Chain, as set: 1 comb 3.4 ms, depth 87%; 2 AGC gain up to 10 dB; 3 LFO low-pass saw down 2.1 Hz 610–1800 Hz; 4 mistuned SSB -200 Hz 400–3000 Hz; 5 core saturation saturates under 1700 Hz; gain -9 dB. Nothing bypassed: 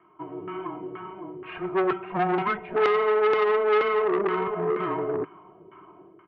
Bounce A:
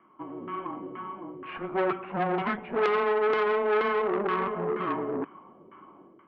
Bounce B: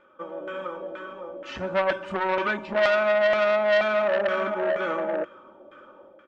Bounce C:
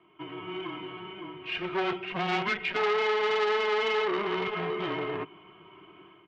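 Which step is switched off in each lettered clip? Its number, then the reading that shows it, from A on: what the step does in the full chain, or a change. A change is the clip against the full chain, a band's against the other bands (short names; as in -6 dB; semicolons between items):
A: 1, 500 Hz band -1.5 dB; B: 4, 250 Hz band -7.0 dB; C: 3, 4 kHz band +12.5 dB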